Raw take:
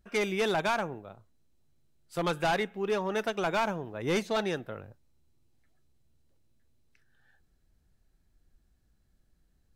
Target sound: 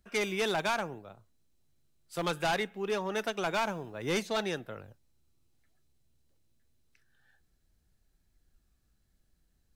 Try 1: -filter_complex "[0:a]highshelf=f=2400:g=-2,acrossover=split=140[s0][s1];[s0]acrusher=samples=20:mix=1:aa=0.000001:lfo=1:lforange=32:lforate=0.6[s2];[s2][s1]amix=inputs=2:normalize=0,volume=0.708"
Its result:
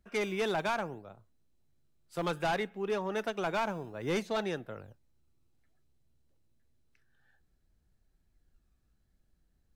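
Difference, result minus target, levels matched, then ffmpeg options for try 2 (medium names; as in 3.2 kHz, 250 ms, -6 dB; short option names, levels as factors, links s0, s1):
4 kHz band -4.0 dB
-filter_complex "[0:a]highshelf=f=2400:g=5.5,acrossover=split=140[s0][s1];[s0]acrusher=samples=20:mix=1:aa=0.000001:lfo=1:lforange=32:lforate=0.6[s2];[s2][s1]amix=inputs=2:normalize=0,volume=0.708"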